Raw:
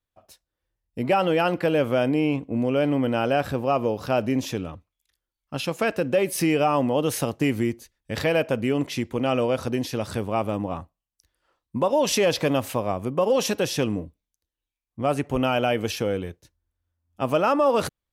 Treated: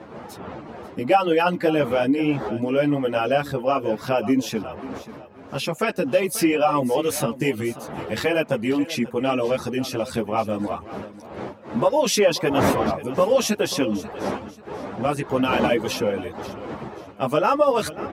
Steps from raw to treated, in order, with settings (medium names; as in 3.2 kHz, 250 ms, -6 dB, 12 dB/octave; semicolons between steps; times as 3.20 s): wind noise 640 Hz -34 dBFS; high-pass 110 Hz 12 dB/octave; in parallel at -2.5 dB: compression, threshold -37 dBFS, peak gain reduction 20.5 dB; on the sum: reverb removal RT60 0.59 s; on a send: feedback delay 537 ms, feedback 30%, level -16 dB; on the sum: three-phase chorus; trim +4.5 dB